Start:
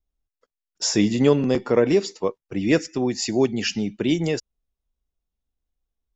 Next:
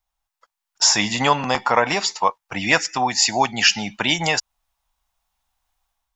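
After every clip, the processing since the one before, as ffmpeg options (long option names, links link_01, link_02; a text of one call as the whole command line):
ffmpeg -i in.wav -filter_complex "[0:a]dynaudnorm=framelen=490:gausssize=3:maxgain=7.5dB,lowshelf=frequency=580:width_type=q:width=3:gain=-13.5,asplit=2[link_01][link_02];[link_02]acompressor=threshold=-30dB:ratio=6,volume=-1dB[link_03];[link_01][link_03]amix=inputs=2:normalize=0,volume=3.5dB" out.wav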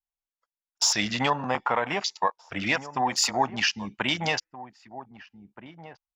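ffmpeg -i in.wav -filter_complex "[0:a]alimiter=limit=-7dB:level=0:latency=1:release=227,afwtdn=0.0398,asplit=2[link_01][link_02];[link_02]adelay=1574,volume=-14dB,highshelf=frequency=4000:gain=-35.4[link_03];[link_01][link_03]amix=inputs=2:normalize=0,volume=-4.5dB" out.wav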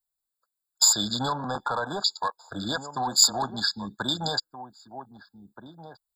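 ffmpeg -i in.wav -filter_complex "[0:a]acrossover=split=170|1500|3600[link_01][link_02][link_03][link_04];[link_02]asoftclip=type=tanh:threshold=-25dB[link_05];[link_01][link_05][link_03][link_04]amix=inputs=4:normalize=0,crystalizer=i=2.5:c=0,afftfilt=real='re*eq(mod(floor(b*sr/1024/1700),2),0)':imag='im*eq(mod(floor(b*sr/1024/1700),2),0)':win_size=1024:overlap=0.75" out.wav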